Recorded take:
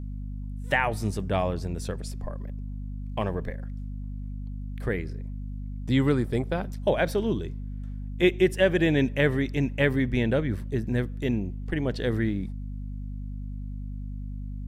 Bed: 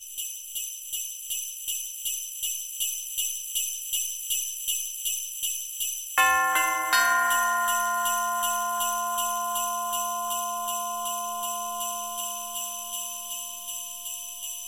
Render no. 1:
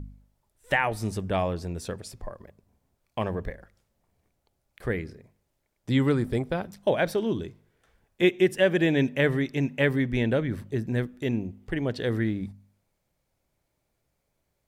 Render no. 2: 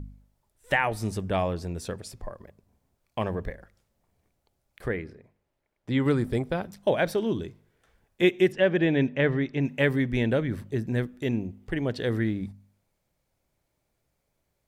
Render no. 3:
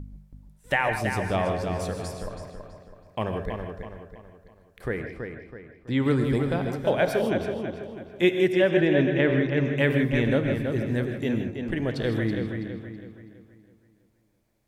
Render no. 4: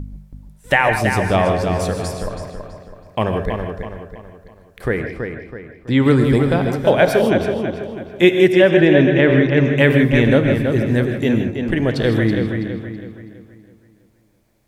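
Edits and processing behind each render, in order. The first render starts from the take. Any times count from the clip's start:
hum removal 50 Hz, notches 5
0:04.88–0:06.06: bass and treble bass −4 dB, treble −11 dB; 0:08.52–0:09.65: high-frequency loss of the air 160 metres
feedback echo with a low-pass in the loop 327 ms, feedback 42%, low-pass 4,700 Hz, level −6 dB; reverb whose tail is shaped and stops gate 180 ms rising, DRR 6.5 dB
level +9.5 dB; brickwall limiter −2 dBFS, peak gain reduction 2.5 dB

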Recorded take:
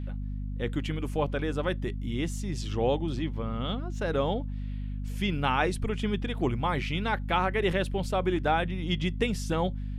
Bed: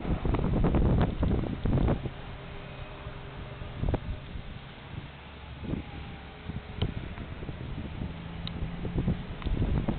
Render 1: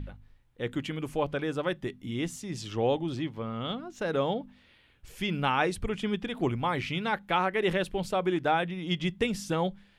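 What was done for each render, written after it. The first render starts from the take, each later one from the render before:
hum removal 50 Hz, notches 5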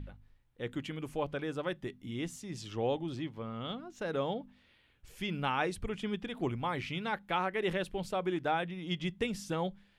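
level −5.5 dB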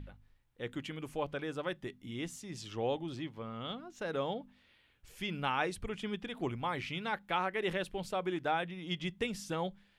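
low-shelf EQ 500 Hz −3.5 dB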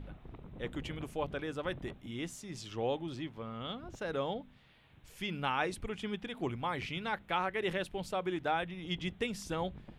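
mix in bed −22 dB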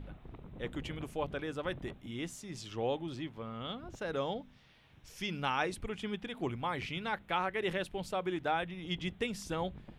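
0:04.16–0:05.63: parametric band 5,600 Hz +11 dB 0.44 octaves

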